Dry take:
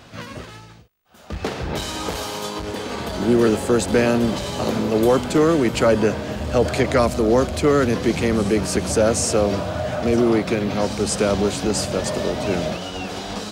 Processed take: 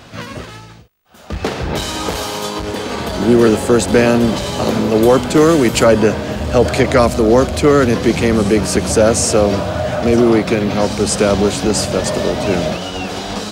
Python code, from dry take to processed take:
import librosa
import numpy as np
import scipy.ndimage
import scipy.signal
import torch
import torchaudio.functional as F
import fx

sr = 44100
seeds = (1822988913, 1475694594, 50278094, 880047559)

y = fx.high_shelf(x, sr, hz=5500.0, db=8.5, at=(5.37, 5.84))
y = y * 10.0 ** (6.0 / 20.0)